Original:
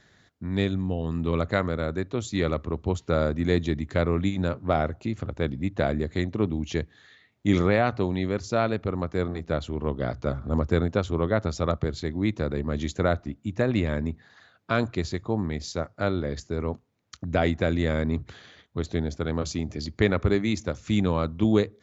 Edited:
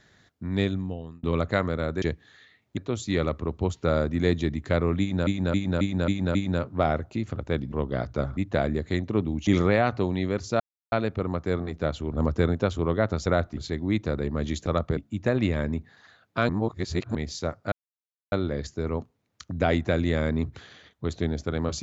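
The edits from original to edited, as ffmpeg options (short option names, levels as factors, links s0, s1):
-filter_complex "[0:a]asplit=21[s0][s1][s2][s3][s4][s5][s6][s7][s8][s9][s10][s11][s12][s13][s14][s15][s16][s17][s18][s19][s20];[s0]atrim=end=1.23,asetpts=PTS-STARTPTS,afade=t=out:st=0.67:d=0.56[s21];[s1]atrim=start=1.23:end=2.022,asetpts=PTS-STARTPTS,afade=t=in:d=0.004:c=hsin[s22];[s2]atrim=start=6.718:end=7.472[s23];[s3]atrim=start=2.018:end=4.522[s24];[s4]atrim=start=4.248:end=4.522[s25];[s5]atrim=start=4.248:end=4.522[s26];[s6]atrim=start=4.248:end=4.522[s27];[s7]atrim=start=4.248:end=4.522[s28];[s8]atrim=start=4.248:end=5.622[s29];[s9]atrim=start=9.798:end=10.452[s30];[s10]atrim=start=5.618:end=6.722[s31];[s11]atrim=start=7.468:end=8.6,asetpts=PTS-STARTPTS,afade=t=out:st=1.128:d=0.004:c=hsin,apad=pad_dur=0.32[s32];[s12]atrim=start=8.6:end=9.802,asetpts=PTS-STARTPTS,afade=t=in:d=0.004:c=hsin[s33];[s13]atrim=start=10.448:end=11.592[s34];[s14]atrim=start=12.988:end=13.302[s35];[s15]atrim=start=11.898:end=12.992[s36];[s16]atrim=start=11.588:end=11.902[s37];[s17]atrim=start=13.298:end=14.822[s38];[s18]atrim=start=14.818:end=15.482,asetpts=PTS-STARTPTS,areverse[s39];[s19]atrim=start=15.478:end=16.05,asetpts=PTS-STARTPTS,afade=t=out:st=0.568:d=0.004:c=hsin,apad=pad_dur=0.6[s40];[s20]atrim=start=16.05,asetpts=PTS-STARTPTS,afade=t=in:d=0.004:c=hsin[s41];[s21][s22]concat=n=2:v=0:a=1[s42];[s42][s23]acrossfade=d=0.004:c1=hsin:c2=hsin[s43];[s43][s24]acrossfade=d=0.004:c1=hsin:c2=hsin[s44];[s44][s25]acrossfade=d=0.004:c1=hsin:c2=hsin[s45];[s45][s26]acrossfade=d=0.004:c1=hsin:c2=hsin[s46];[s46][s27]acrossfade=d=0.004:c1=hsin:c2=hsin[s47];[s47][s28]acrossfade=d=0.004:c1=hsin:c2=hsin[s48];[s48][s29]acrossfade=d=0.004:c1=hsin:c2=hsin[s49];[s49][s30]acrossfade=d=0.004:c1=hsin:c2=hsin[s50];[s50][s31]acrossfade=d=0.004:c1=hsin:c2=hsin[s51];[s32][s33]concat=n=2:v=0:a=1[s52];[s51][s52]acrossfade=d=0.004:c1=hsin:c2=hsin[s53];[s53][s34]acrossfade=d=0.004:c1=hsin:c2=hsin[s54];[s54][s35]acrossfade=d=0.004:c1=hsin:c2=hsin[s55];[s55][s36]acrossfade=d=0.004:c1=hsin:c2=hsin[s56];[s56][s37]acrossfade=d=0.004:c1=hsin:c2=hsin[s57];[s57][s38]acrossfade=d=0.004:c1=hsin:c2=hsin[s58];[s58][s39]acrossfade=d=0.004:c1=hsin:c2=hsin[s59];[s40][s41]concat=n=2:v=0:a=1[s60];[s59][s60]acrossfade=d=0.004:c1=hsin:c2=hsin"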